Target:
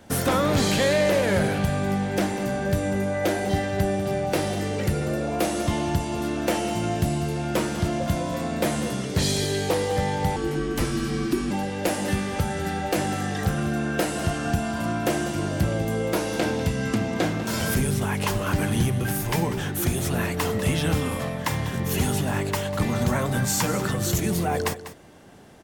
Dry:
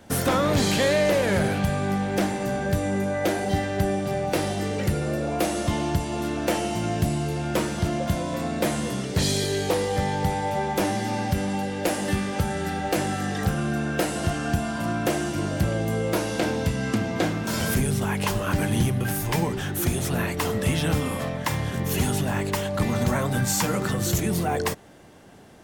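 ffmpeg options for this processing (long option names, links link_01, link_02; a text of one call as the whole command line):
ffmpeg -i in.wav -filter_complex "[0:a]asettb=1/sr,asplit=3[link_01][link_02][link_03];[link_01]atrim=end=10.364[link_04];[link_02]atrim=start=10.36:end=11.51,asetpts=PTS-STARTPTS,afade=type=in:duration=0.004:curve=qsin,afade=type=out:start_time=1.146:duration=0.004:curve=qsin,afreqshift=-440[link_05];[link_03]atrim=start=11.506[link_06];[link_04][link_05]acrossfade=duration=0.004:curve1=hsin:curve2=qsin[link_07];[link_07][link_06]acrossfade=duration=0.004:curve1=qsin:curve2=hsin,aecho=1:1:195:0.211" out.wav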